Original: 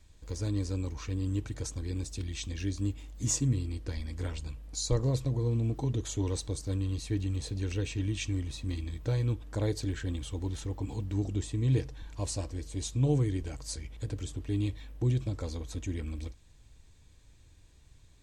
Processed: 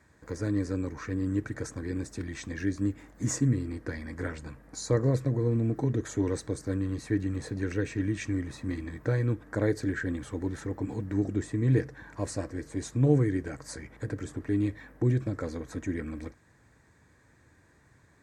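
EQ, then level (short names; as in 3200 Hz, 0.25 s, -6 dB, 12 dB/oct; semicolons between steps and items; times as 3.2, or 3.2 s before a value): HPF 150 Hz 12 dB/oct; resonant high shelf 2300 Hz -9 dB, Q 3; dynamic EQ 900 Hz, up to -7 dB, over -55 dBFS, Q 1.8; +6.5 dB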